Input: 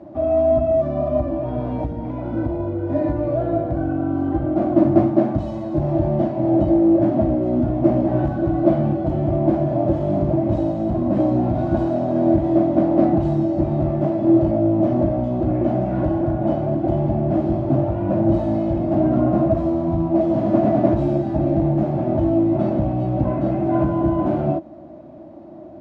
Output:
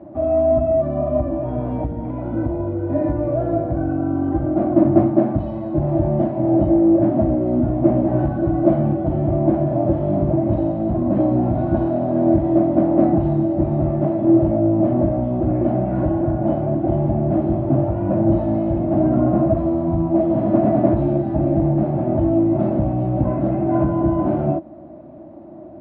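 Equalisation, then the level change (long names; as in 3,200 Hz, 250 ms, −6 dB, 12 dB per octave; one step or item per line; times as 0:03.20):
high-frequency loss of the air 370 metres
+1.5 dB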